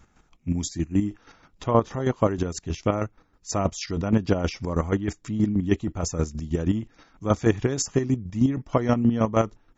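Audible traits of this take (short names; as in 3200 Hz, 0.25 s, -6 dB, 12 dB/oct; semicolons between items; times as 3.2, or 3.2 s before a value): chopped level 6.3 Hz, depth 60%, duty 30%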